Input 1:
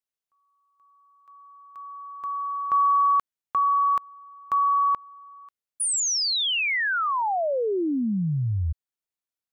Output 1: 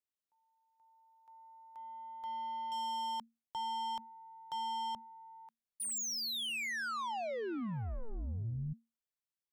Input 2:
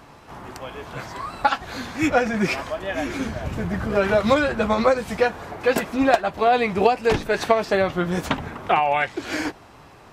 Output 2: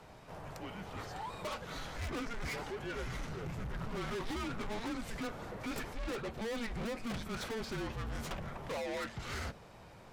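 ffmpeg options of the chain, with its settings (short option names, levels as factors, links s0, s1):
-af "aeval=exprs='(tanh(28.2*val(0)+0.1)-tanh(0.1))/28.2':c=same,afreqshift=-230,volume=0.422"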